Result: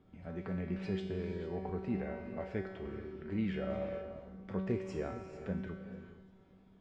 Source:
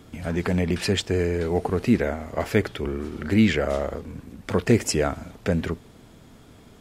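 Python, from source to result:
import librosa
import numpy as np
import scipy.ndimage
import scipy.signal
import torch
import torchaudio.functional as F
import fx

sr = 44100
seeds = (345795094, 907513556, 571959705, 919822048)

y = fx.spacing_loss(x, sr, db_at_10k=31)
y = fx.comb_fb(y, sr, f0_hz=190.0, decay_s=0.99, harmonics='all', damping=0.0, mix_pct=90)
y = fx.echo_feedback(y, sr, ms=347, feedback_pct=54, wet_db=-22.5)
y = fx.rev_gated(y, sr, seeds[0], gate_ms=480, shape='rising', drr_db=8.5)
y = y * librosa.db_to_amplitude(2.0)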